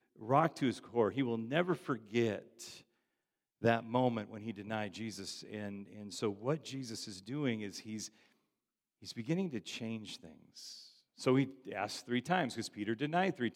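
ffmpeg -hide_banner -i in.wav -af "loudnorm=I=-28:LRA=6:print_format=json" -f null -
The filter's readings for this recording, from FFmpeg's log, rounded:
"input_i" : "-36.5",
"input_tp" : "-15.2",
"input_lra" : "5.3",
"input_thresh" : "-47.2",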